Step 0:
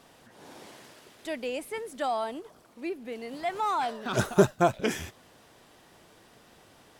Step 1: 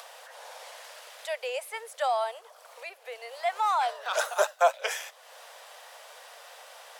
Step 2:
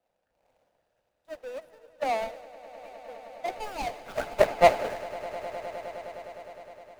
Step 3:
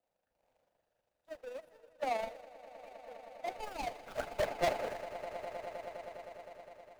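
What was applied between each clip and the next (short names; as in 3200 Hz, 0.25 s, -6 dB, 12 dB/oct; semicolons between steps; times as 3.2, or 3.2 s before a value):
steep high-pass 500 Hz 72 dB/oct; upward compressor, threshold -42 dBFS; gain +2.5 dB
median filter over 41 samples; on a send: swelling echo 0.103 s, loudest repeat 8, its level -14 dB; on the sum: three-band expander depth 100%
hard clip -20 dBFS, distortion -5 dB; AM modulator 25 Hz, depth 30%; gain -4.5 dB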